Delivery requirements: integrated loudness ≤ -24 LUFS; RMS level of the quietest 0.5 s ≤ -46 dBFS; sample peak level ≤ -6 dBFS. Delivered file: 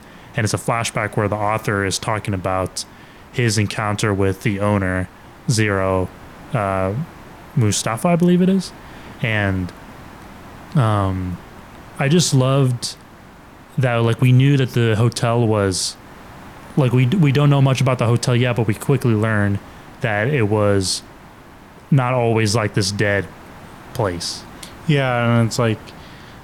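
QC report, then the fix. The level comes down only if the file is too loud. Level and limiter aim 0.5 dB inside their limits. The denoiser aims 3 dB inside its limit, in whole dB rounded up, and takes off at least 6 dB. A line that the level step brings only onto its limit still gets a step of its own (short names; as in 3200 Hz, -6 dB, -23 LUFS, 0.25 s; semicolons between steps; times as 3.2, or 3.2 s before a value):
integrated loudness -18.5 LUFS: fail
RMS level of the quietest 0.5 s -42 dBFS: fail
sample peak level -5.0 dBFS: fail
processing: gain -6 dB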